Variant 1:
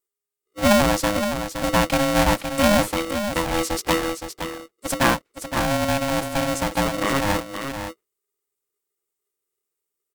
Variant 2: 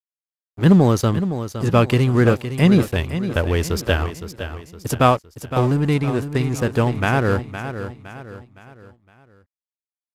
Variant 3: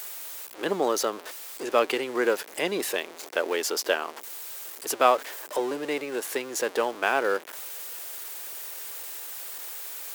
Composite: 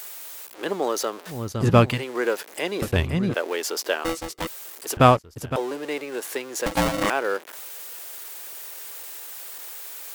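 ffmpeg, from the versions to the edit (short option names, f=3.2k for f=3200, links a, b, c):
-filter_complex "[1:a]asplit=3[a][b][c];[0:a]asplit=2[d][e];[2:a]asplit=6[f][g][h][i][j][k];[f]atrim=end=1.5[l];[a]atrim=start=1.26:end=2.03[m];[g]atrim=start=1.79:end=2.822[n];[b]atrim=start=2.818:end=3.342[o];[h]atrim=start=3.338:end=4.052[p];[d]atrim=start=4.048:end=4.472[q];[i]atrim=start=4.468:end=4.972[r];[c]atrim=start=4.968:end=5.562[s];[j]atrim=start=5.558:end=6.662[t];[e]atrim=start=6.658:end=7.102[u];[k]atrim=start=7.098[v];[l][m]acrossfade=d=0.24:c1=tri:c2=tri[w];[w][n]acrossfade=d=0.24:c1=tri:c2=tri[x];[x][o]acrossfade=d=0.004:c1=hsin:c2=hsin[y];[y][p]acrossfade=d=0.004:c1=hsin:c2=hsin[z];[z][q]acrossfade=d=0.004:c1=hsin:c2=hsin[aa];[aa][r]acrossfade=d=0.004:c1=hsin:c2=hsin[ab];[ab][s]acrossfade=d=0.004:c1=hsin:c2=hsin[ac];[ac][t]acrossfade=d=0.004:c1=hsin:c2=hsin[ad];[ad][u]acrossfade=d=0.004:c1=hsin:c2=hsin[ae];[ae][v]acrossfade=d=0.004:c1=hsin:c2=hsin"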